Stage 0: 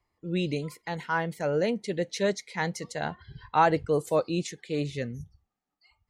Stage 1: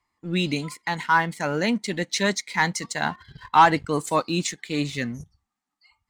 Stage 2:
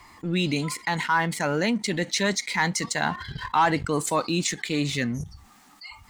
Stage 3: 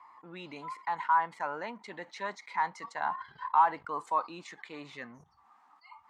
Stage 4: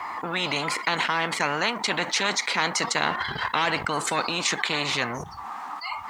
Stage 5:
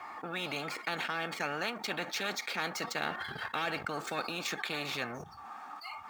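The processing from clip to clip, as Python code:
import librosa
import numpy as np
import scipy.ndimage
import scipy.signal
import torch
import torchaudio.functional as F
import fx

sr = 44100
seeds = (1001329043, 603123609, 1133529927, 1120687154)

y1 = fx.graphic_eq_10(x, sr, hz=(250, 500, 1000, 2000, 4000, 8000), db=(9, -7, 11, 7, 6, 11))
y1 = fx.leveller(y1, sr, passes=1)
y1 = y1 * librosa.db_to_amplitude(-4.0)
y2 = fx.env_flatten(y1, sr, amount_pct=50)
y2 = y2 * librosa.db_to_amplitude(-6.5)
y3 = fx.bandpass_q(y2, sr, hz=1000.0, q=3.3)
y4 = fx.spectral_comp(y3, sr, ratio=4.0)
y4 = y4 * librosa.db_to_amplitude(6.5)
y5 = scipy.ndimage.median_filter(y4, 5, mode='constant')
y5 = fx.notch_comb(y5, sr, f0_hz=1000.0)
y5 = y5 * librosa.db_to_amplitude(-8.5)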